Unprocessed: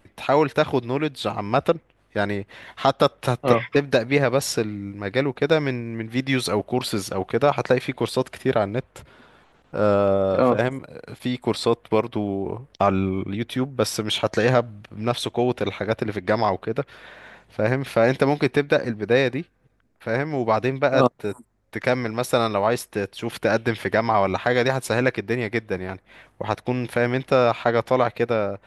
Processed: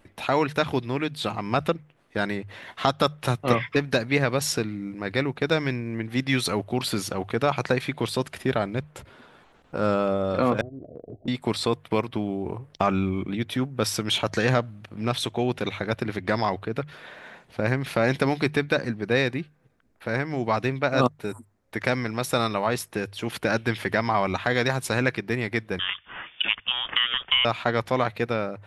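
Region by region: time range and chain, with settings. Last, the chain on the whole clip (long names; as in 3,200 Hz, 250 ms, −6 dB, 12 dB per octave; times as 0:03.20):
0:10.61–0:11.28: Butterworth low-pass 720 Hz 96 dB per octave + comb filter 2.9 ms, depth 32% + downward compressor 5 to 1, threshold −33 dBFS
0:25.79–0:27.45: low-shelf EQ 250 Hz −12 dB + voice inversion scrambler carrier 3,500 Hz + multiband upward and downward compressor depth 70%
whole clip: mains-hum notches 50/100/150 Hz; dynamic equaliser 540 Hz, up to −6 dB, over −31 dBFS, Q 0.81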